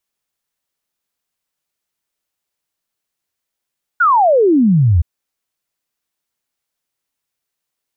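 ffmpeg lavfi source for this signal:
-f lavfi -i "aevalsrc='0.398*clip(min(t,1.02-t)/0.01,0,1)*sin(2*PI*1500*1.02/log(76/1500)*(exp(log(76/1500)*t/1.02)-1))':d=1.02:s=44100"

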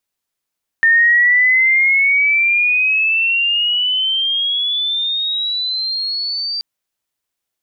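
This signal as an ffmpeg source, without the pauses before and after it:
-f lavfi -i "aevalsrc='pow(10,(-8-11*t/5.78)/20)*sin(2*PI*1810*5.78/(16.5*log(2)/12)*(exp(16.5*log(2)/12*t/5.78)-1))':d=5.78:s=44100"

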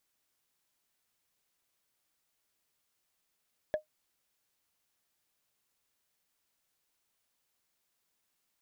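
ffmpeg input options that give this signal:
-f lavfi -i "aevalsrc='0.075*pow(10,-3*t/0.12)*sin(2*PI*614*t)+0.0211*pow(10,-3*t/0.036)*sin(2*PI*1692.8*t)+0.00596*pow(10,-3*t/0.016)*sin(2*PI*3318.1*t)+0.00168*pow(10,-3*t/0.009)*sin(2*PI*5484.9*t)+0.000473*pow(10,-3*t/0.005)*sin(2*PI*8190.8*t)':d=0.45:s=44100"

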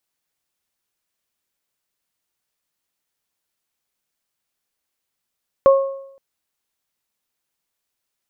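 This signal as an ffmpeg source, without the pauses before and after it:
-f lavfi -i "aevalsrc='0.501*pow(10,-3*t/0.75)*sin(2*PI*545*t)+0.178*pow(10,-3*t/0.62)*sin(2*PI*1090*t)':d=0.52:s=44100"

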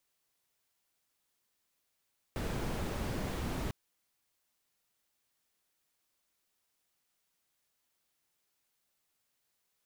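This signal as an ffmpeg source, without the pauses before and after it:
-f lavfi -i "anoisesrc=c=brown:a=0.0785:d=1.35:r=44100:seed=1"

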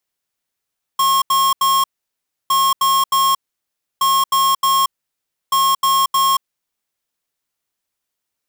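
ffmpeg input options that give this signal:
-f lavfi -i "aevalsrc='0.188*(2*lt(mod(1080*t,1),0.5)-1)*clip(min(mod(mod(t,1.51),0.31),0.23-mod(mod(t,1.51),0.31))/0.005,0,1)*lt(mod(t,1.51),0.93)':d=6.04:s=44100"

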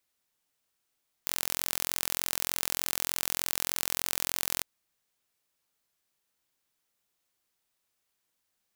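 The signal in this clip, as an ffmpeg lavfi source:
-f lavfi -i "aevalsrc='0.75*eq(mod(n,1018),0)':d=3.35:s=44100"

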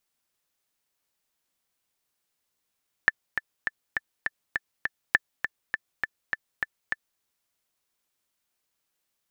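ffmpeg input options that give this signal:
-f lavfi -i "aevalsrc='pow(10,(-4.5-8.5*gte(mod(t,7*60/203),60/203))/20)*sin(2*PI*1760*mod(t,60/203))*exp(-6.91*mod(t,60/203)/0.03)':d=4.13:s=44100"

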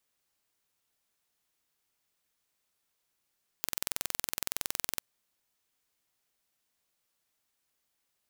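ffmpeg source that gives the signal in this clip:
-f lavfi -i "aevalsrc='0.631*eq(mod(n,2042),0)':d=1.38:s=44100"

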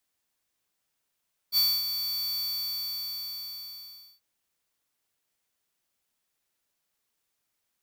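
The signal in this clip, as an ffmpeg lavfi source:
-f lavfi -i "aevalsrc='0.0794*(2*lt(mod(4520*t,1),0.5)-1)':d=2.68:s=44100,afade=t=in:d=0.051,afade=t=out:st=0.051:d=0.251:silence=0.355,afade=t=out:st=0.87:d=1.81"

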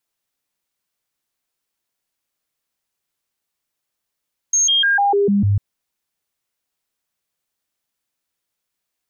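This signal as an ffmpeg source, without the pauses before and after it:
-f lavfi -i "aevalsrc='0.237*clip(min(mod(t,0.15),0.15-mod(t,0.15))/0.005,0,1)*sin(2*PI*6450*pow(2,-floor(t/0.15)/1)*mod(t,0.15))':d=1.05:s=44100"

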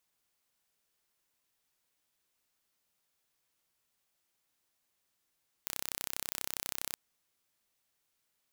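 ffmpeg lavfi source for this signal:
-f lavfi -i "aevalsrc='0.376*eq(mod(n,1365),0)':d=1.3:s=44100"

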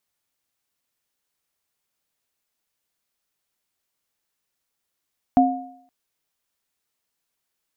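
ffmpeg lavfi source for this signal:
-f lavfi -i "aevalsrc='0.251*pow(10,-3*t/0.6)*sin(2*PI*264*t)+0.251*pow(10,-3*t/0.65)*sin(2*PI*718*t)':d=0.52:s=44100"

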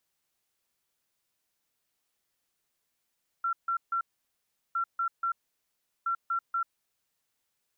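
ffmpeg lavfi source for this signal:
-f lavfi -i "aevalsrc='0.0501*sin(2*PI*1360*t)*clip(min(mod(mod(t,1.31),0.24),0.09-mod(mod(t,1.31),0.24))/0.005,0,1)*lt(mod(t,1.31),0.72)':d=3.93:s=44100"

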